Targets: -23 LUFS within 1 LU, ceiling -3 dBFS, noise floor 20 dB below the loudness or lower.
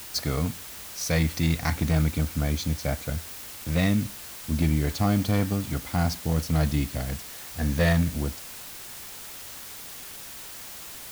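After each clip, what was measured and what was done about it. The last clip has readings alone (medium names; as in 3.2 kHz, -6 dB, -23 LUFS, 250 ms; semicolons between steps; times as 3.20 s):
clipped samples 0.4%; clipping level -14.5 dBFS; noise floor -41 dBFS; noise floor target -48 dBFS; loudness -28.0 LUFS; peak level -14.5 dBFS; loudness target -23.0 LUFS
-> clip repair -14.5 dBFS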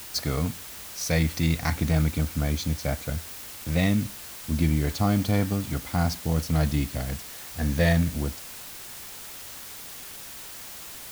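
clipped samples 0.0%; noise floor -41 dBFS; noise floor target -48 dBFS
-> noise reduction 7 dB, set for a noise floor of -41 dBFS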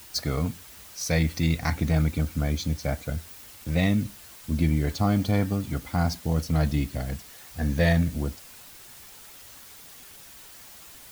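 noise floor -47 dBFS; loudness -26.5 LUFS; peak level -9.0 dBFS; loudness target -23.0 LUFS
-> trim +3.5 dB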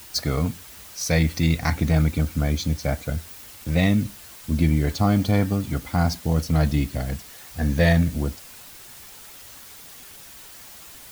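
loudness -23.0 LUFS; peak level -5.5 dBFS; noise floor -44 dBFS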